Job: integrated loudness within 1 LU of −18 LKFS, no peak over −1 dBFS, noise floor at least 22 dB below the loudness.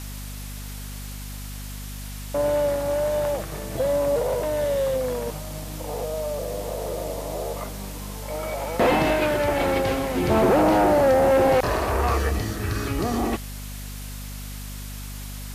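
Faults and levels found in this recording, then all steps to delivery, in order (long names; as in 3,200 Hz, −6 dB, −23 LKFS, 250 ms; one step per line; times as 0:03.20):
mains hum 50 Hz; hum harmonics up to 250 Hz; level of the hum −33 dBFS; background noise floor −35 dBFS; target noise floor −46 dBFS; integrated loudness −23.5 LKFS; sample peak −11.0 dBFS; target loudness −18.0 LKFS
→ mains-hum notches 50/100/150/200/250 Hz
noise reduction from a noise print 11 dB
level +5.5 dB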